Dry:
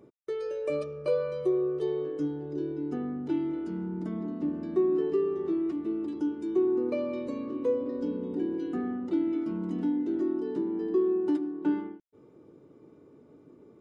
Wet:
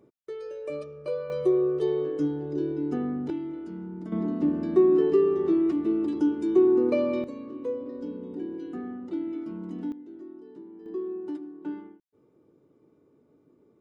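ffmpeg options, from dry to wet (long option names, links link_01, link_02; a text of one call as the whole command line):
ffmpeg -i in.wav -af "asetnsamples=nb_out_samples=441:pad=0,asendcmd='1.3 volume volume 4dB;3.3 volume volume -3.5dB;4.12 volume volume 6dB;7.24 volume volume -4dB;9.92 volume volume -14.5dB;10.86 volume volume -7.5dB',volume=-4dB" out.wav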